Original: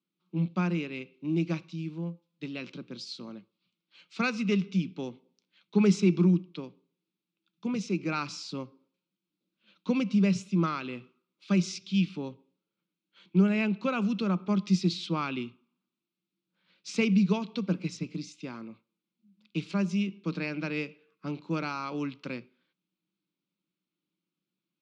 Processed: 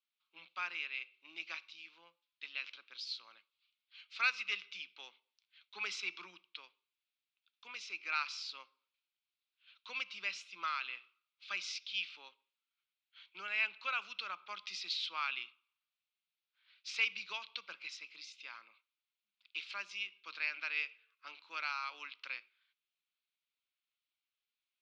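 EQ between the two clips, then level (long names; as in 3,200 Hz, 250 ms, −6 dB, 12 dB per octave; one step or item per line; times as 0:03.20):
high-pass filter 1,200 Hz 12 dB per octave
high-frequency loss of the air 330 metres
first difference
+15.0 dB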